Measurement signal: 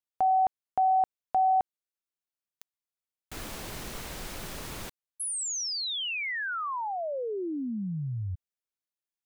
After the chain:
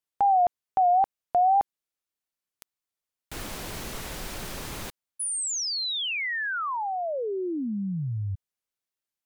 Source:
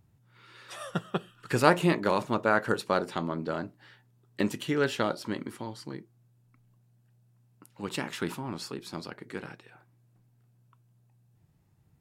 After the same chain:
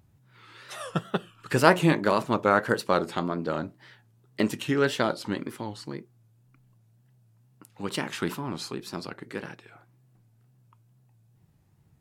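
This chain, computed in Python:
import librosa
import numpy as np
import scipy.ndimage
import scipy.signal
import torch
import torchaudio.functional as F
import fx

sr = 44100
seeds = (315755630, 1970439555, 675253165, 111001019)

y = fx.wow_flutter(x, sr, seeds[0], rate_hz=2.1, depth_cents=110.0)
y = F.gain(torch.from_numpy(y), 3.0).numpy()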